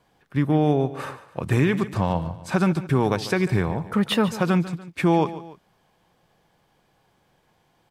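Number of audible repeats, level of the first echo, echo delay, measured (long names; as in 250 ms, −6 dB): 2, −15.0 dB, 145 ms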